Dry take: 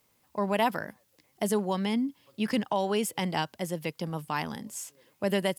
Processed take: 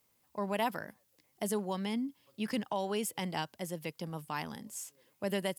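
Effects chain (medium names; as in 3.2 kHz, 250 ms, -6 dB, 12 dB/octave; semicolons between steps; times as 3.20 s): treble shelf 6.7 kHz +4.5 dB; trim -6.5 dB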